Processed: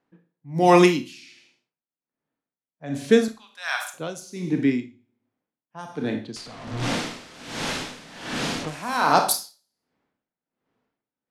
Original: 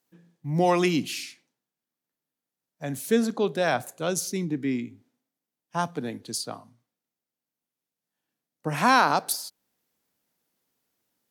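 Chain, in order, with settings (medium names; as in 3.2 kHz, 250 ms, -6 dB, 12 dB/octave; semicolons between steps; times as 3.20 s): 6.36–8.97 s: one-bit delta coder 64 kbps, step -24.5 dBFS; level-controlled noise filter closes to 1.9 kHz, open at -21.5 dBFS; 3.28–3.94 s: high-pass 1.1 kHz 24 dB/octave; Schroeder reverb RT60 0.47 s, combs from 25 ms, DRR 5.5 dB; logarithmic tremolo 1.3 Hz, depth 19 dB; trim +7.5 dB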